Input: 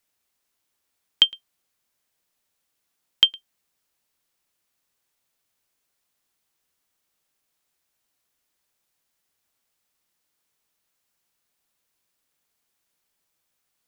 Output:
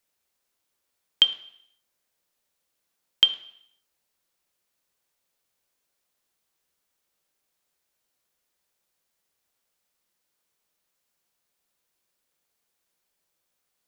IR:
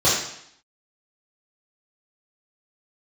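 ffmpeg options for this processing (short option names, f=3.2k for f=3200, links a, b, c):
-filter_complex "[0:a]asplit=2[a][b];[1:a]atrim=start_sample=2205,lowshelf=f=230:g=-10,highshelf=f=3k:g=-11.5[c];[b][c]afir=irnorm=-1:irlink=0,volume=-24dB[d];[a][d]amix=inputs=2:normalize=0,volume=-2dB"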